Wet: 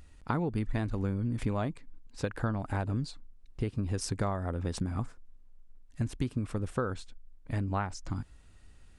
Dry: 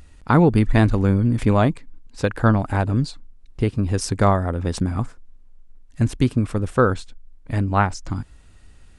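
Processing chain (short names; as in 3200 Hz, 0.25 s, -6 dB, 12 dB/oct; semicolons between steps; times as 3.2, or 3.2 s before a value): compressor 6:1, threshold -20 dBFS, peak gain reduction 10 dB; gain -7.5 dB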